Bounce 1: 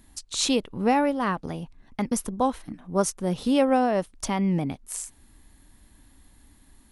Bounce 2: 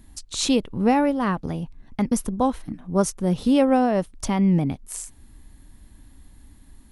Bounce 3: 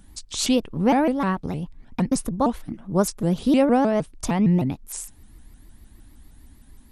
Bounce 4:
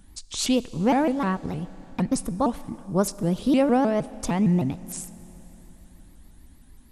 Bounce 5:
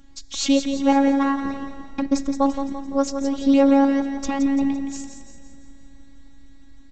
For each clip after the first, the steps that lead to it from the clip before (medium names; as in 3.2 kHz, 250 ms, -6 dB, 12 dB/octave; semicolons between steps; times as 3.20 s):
bass shelf 280 Hz +8 dB
vibrato with a chosen wave saw up 6.5 Hz, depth 250 cents
Schroeder reverb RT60 3.9 s, combs from 28 ms, DRR 17.5 dB; trim -2 dB
robot voice 275 Hz; feedback delay 170 ms, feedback 49%, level -8 dB; resampled via 16 kHz; trim +4.5 dB